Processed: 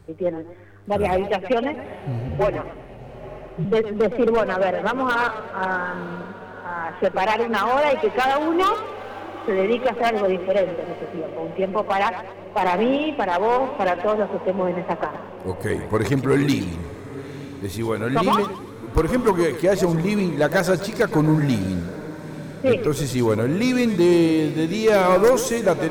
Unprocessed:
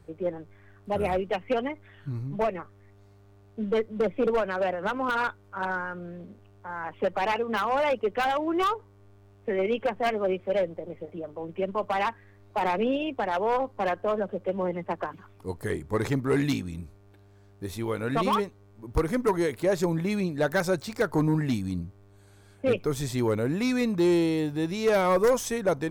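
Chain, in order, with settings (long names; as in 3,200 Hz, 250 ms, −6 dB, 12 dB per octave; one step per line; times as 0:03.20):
0:02.28–0:03.65: frequency shifter −57 Hz
feedback delay with all-pass diffusion 916 ms, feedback 52%, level −15.5 dB
feedback echo with a swinging delay time 116 ms, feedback 37%, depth 163 cents, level −12 dB
level +6 dB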